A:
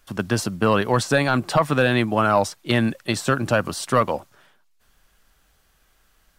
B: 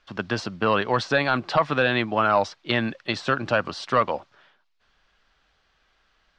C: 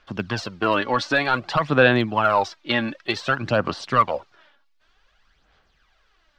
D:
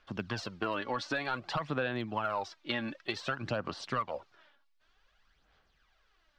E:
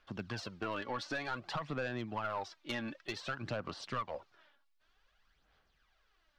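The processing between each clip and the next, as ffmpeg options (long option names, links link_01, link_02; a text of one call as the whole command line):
ffmpeg -i in.wav -af "lowpass=frequency=4800:width=0.5412,lowpass=frequency=4800:width=1.3066,lowshelf=frequency=360:gain=-8.5" out.wav
ffmpeg -i in.wav -af "aphaser=in_gain=1:out_gain=1:delay=3.6:decay=0.55:speed=0.54:type=sinusoidal" out.wav
ffmpeg -i in.wav -af "acompressor=threshold=-23dB:ratio=4,volume=-7.5dB" out.wav
ffmpeg -i in.wav -af "aeval=exprs='(tanh(20*val(0)+0.25)-tanh(0.25))/20':channel_layout=same,volume=-2.5dB" out.wav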